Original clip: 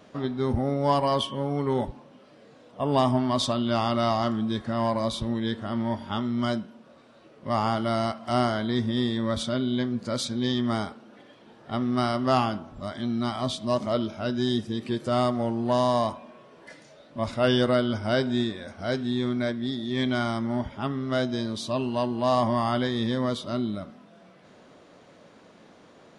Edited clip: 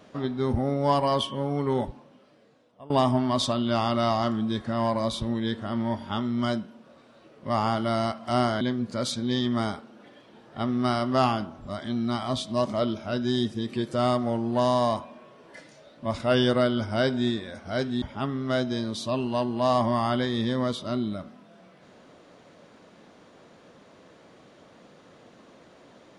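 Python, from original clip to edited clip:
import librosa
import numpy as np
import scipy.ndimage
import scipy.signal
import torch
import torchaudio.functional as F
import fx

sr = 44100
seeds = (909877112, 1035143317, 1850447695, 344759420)

y = fx.edit(x, sr, fx.fade_out_to(start_s=1.75, length_s=1.15, floor_db=-22.0),
    fx.cut(start_s=8.61, length_s=1.13),
    fx.cut(start_s=19.15, length_s=1.49), tone=tone)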